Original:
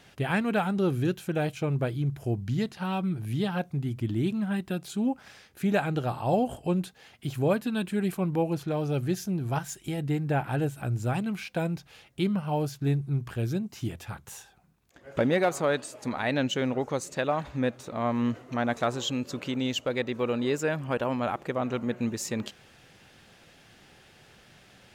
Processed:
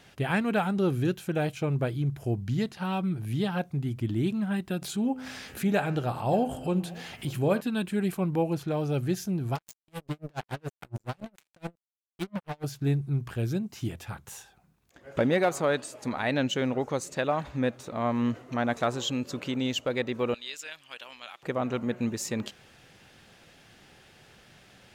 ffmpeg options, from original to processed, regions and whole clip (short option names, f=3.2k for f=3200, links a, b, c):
-filter_complex "[0:a]asettb=1/sr,asplit=3[a][b][c];[a]atrim=end=4.824[d];[b]atrim=start=4.82:end=7.61,asetpts=PTS-STARTPTS,afade=t=in:d=0.004:c=qsin,afade=t=out:st=2.786:d=0.004:c=qsin,bandreject=f=85.7:t=h:w=4,bandreject=f=171.4:t=h:w=4,bandreject=f=257.1:t=h:w=4,bandreject=f=342.8:t=h:w=4,bandreject=f=428.5:t=h:w=4,bandreject=f=514.2:t=h:w=4,bandreject=f=599.9:t=h:w=4,bandreject=f=685.6:t=h:w=4,bandreject=f=771.3:t=h:w=4,bandreject=f=857:t=h:w=4,bandreject=f=942.7:t=h:w=4,bandreject=f=1.0284k:t=h:w=4,bandreject=f=1.1141k:t=h:w=4,bandreject=f=1.1998k:t=h:w=4,bandreject=f=1.2855k:t=h:w=4,bandreject=f=1.3712k:t=h:w=4,bandreject=f=1.4569k:t=h:w=4,bandreject=f=1.5426k:t=h:w=4,bandreject=f=1.6283k:t=h:w=4,bandreject=f=1.714k:t=h:w=4,bandreject=f=1.7997k:t=h:w=4,bandreject=f=1.8854k:t=h:w=4,bandreject=f=1.9711k:t=h:w=4,bandreject=f=2.0568k:t=h:w=4,bandreject=f=2.1425k:t=h:w=4,bandreject=f=2.2282k:t=h:w=4,bandreject=f=2.3139k:t=h:w=4,bandreject=f=2.3996k:t=h:w=4,bandreject=f=2.4853k:t=h:w=4,bandreject=f=2.571k:t=h:w=4,bandreject=f=2.6567k:t=h:w=4,bandreject=f=2.7424k:t=h:w=4,bandreject=f=2.8281k:t=h:w=4,bandreject=f=2.9138k:t=h:w=4,bandreject=f=2.9995k:t=h:w=4,bandreject=f=3.0852k:t=h:w=4,bandreject=f=3.1709k:t=h:w=4,acompressor=mode=upward:threshold=-29dB:ratio=2.5:attack=3.2:release=140:knee=2.83:detection=peak,aecho=1:1:580:0.0631,atrim=end_sample=123039[e];[c]atrim=start=7.606[f];[d][e]acrossfade=d=0.004:c1=hsin:c2=qsin[g];[g][f]acrossfade=d=0.004:c1=qsin:c2=hsin,asettb=1/sr,asplit=3[h][i][j];[h]atrim=end=9.554[k];[i]atrim=start=9.55:end=12.64,asetpts=PTS-STARTPTS,afade=t=in:d=0.004:c=qsin,afade=t=out:st=3.086:d=0.004:c=qsin,acompressor=threshold=-33dB:ratio=1.5:attack=3.2:release=140:knee=1:detection=peak,acrusher=bits=4:mix=0:aa=0.5,aeval=exprs='val(0)*pow(10,-38*(0.5-0.5*cos(2*PI*7.1*n/s))/20)':c=same[l];[j]atrim=start=12.636[m];[k][l]acrossfade=d=0.004:c1=hsin:c2=qsin[n];[n][m]acrossfade=d=0.004:c1=qsin:c2=hsin,asettb=1/sr,asplit=3[o][p][q];[o]atrim=end=20.344[r];[p]atrim=start=20.34:end=21.43,asetpts=PTS-STARTPTS,afade=t=in:d=0.004:c=qsin,afade=t=out:st=1.086:d=0.004:c=qsin,bandpass=f=3.3k:t=q:w=1.7,aemphasis=mode=production:type=75fm,tremolo=f=190:d=0.4[s];[q]atrim=start=21.426[t];[r][s]acrossfade=d=0.004:c1=hsin:c2=qsin[u];[u][t]acrossfade=d=0.004:c1=qsin:c2=hsin"